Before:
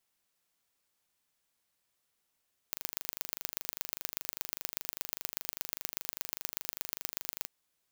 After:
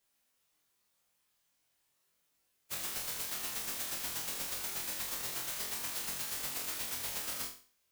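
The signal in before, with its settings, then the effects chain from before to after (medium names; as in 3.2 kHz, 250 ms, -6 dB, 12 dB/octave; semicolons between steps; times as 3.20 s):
pulse train 25 per s, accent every 3, -6 dBFS 4.74 s
phase randomisation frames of 50 ms; on a send: flutter echo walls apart 3.9 m, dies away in 0.41 s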